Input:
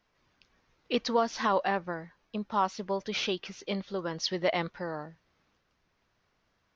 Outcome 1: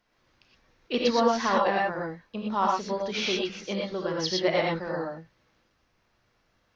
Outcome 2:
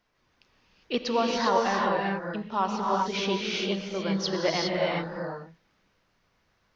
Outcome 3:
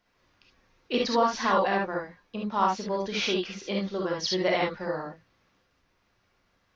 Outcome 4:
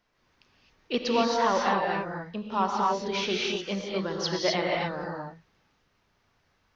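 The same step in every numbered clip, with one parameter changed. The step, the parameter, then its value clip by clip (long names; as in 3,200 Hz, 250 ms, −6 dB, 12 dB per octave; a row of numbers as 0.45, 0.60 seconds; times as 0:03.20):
reverb whose tail is shaped and stops, gate: 140, 430, 90, 290 milliseconds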